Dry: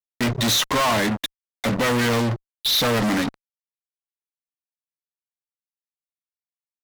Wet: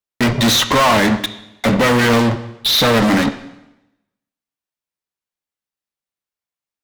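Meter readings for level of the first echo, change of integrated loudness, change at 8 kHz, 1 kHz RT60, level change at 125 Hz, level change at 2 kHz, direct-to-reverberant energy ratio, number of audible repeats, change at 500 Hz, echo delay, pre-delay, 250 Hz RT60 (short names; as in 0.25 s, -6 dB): none, +6.5 dB, +4.0 dB, 0.90 s, +6.0 dB, +7.0 dB, 9.5 dB, none, +7.5 dB, none, 5 ms, 0.95 s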